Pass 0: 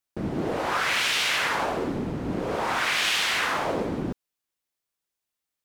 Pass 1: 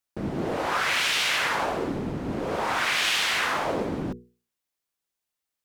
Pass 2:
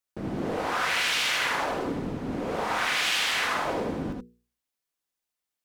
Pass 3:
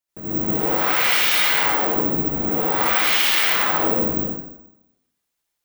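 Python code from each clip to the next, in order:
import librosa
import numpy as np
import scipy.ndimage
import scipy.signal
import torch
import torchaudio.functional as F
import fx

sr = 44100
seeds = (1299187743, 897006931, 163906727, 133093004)

y1 = fx.hum_notches(x, sr, base_hz=60, count=8)
y2 = fx.hum_notches(y1, sr, base_hz=60, count=2)
y2 = fx.echo_multitap(y2, sr, ms=(78, 82), db=(-5.5, -9.0))
y2 = y2 * 10.0 ** (-3.0 / 20.0)
y3 = fx.rev_plate(y2, sr, seeds[0], rt60_s=0.9, hf_ratio=0.75, predelay_ms=80, drr_db=-8.5)
y3 = (np.kron(y3[::2], np.eye(2)[0]) * 2)[:len(y3)]
y3 = y3 * 10.0 ** (-3.5 / 20.0)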